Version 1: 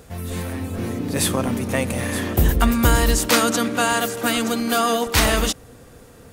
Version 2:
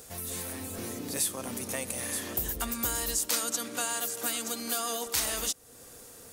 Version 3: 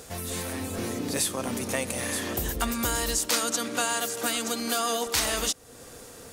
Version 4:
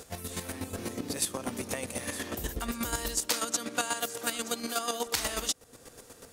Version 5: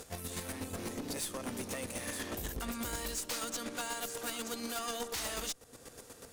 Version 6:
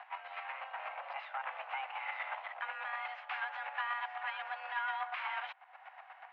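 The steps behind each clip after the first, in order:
tone controls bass -8 dB, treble +13 dB; compression 2:1, threshold -30 dBFS, peak gain reduction 13 dB; trim -6 dB
treble shelf 8.9 kHz -11.5 dB; trim +7 dB
square tremolo 8.2 Hz, depth 60%, duty 25%; trim -1 dB
valve stage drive 34 dB, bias 0.5; overload inside the chain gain 33 dB; trim +1 dB
mistuned SSB +270 Hz 500–2400 Hz; trim +4.5 dB

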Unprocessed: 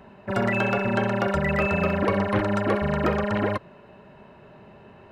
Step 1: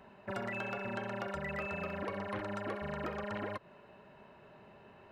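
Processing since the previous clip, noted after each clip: bass shelf 390 Hz -6 dB; compression 5:1, threshold -30 dBFS, peak gain reduction 9.5 dB; trim -6 dB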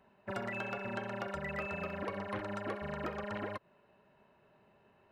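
upward expansion 1.5:1, over -57 dBFS; trim +1 dB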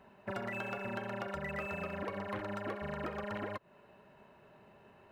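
median filter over 5 samples; compression 2:1, threshold -48 dBFS, peak gain reduction 8 dB; trim +6.5 dB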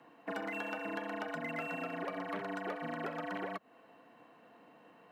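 frequency shift +87 Hz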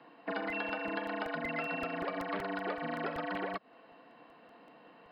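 tone controls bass -2 dB, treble +5 dB; FFT band-pass 110–5100 Hz; crackling interface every 0.19 s, samples 64, repeat, from 0.50 s; trim +3 dB

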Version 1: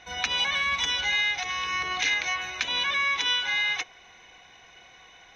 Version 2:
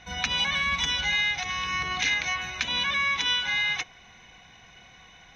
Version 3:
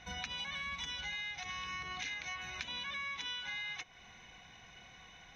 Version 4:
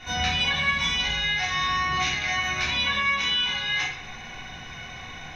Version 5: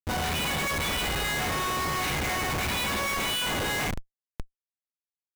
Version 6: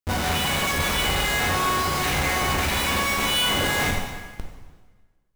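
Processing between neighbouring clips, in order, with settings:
resonant low shelf 270 Hz +7.5 dB, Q 1.5
compression 4:1, threshold -36 dBFS, peak gain reduction 12 dB; trim -4.5 dB
reverberation RT60 0.85 s, pre-delay 3 ms, DRR -10 dB; trim +6.5 dB
Schmitt trigger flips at -27.5 dBFS; trim -1.5 dB
plate-style reverb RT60 1.4 s, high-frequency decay 0.9×, DRR 0.5 dB; trim +2.5 dB

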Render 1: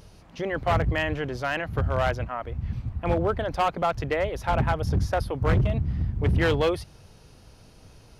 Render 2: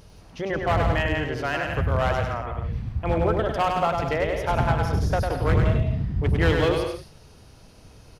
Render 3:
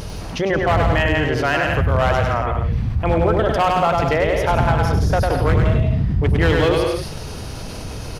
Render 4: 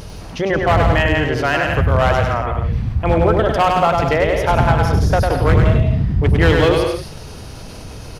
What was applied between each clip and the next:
bouncing-ball echo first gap 100 ms, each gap 0.7×, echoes 5
level flattener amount 50%; trim +3 dB
upward expansion 1.5:1, over -27 dBFS; trim +4 dB

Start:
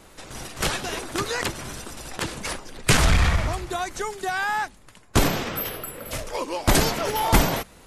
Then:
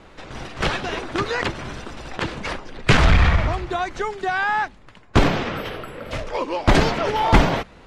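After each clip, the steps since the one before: low-pass 3.4 kHz 12 dB/octave; trim +4 dB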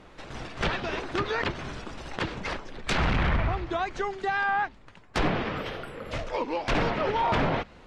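wow and flutter 110 cents; wavefolder -14 dBFS; low-pass that closes with the level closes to 2.9 kHz, closed at -17 dBFS; trim -4.5 dB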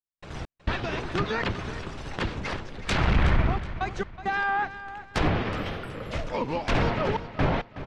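octave divider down 1 oct, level +2 dB; trance gate ".x.xxxxxxxxxxxxx" 67 bpm -60 dB; feedback delay 371 ms, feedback 34%, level -13.5 dB

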